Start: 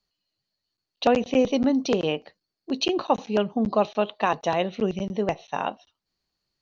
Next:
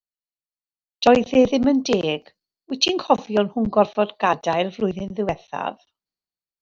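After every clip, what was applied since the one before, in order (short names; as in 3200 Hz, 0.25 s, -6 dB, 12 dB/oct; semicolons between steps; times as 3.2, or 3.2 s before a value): three-band expander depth 70%; gain +3.5 dB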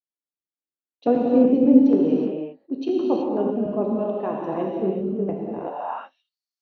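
non-linear reverb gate 0.4 s flat, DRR -2.5 dB; band-pass sweep 300 Hz -> 5300 Hz, 5.6–6.4; gain +1.5 dB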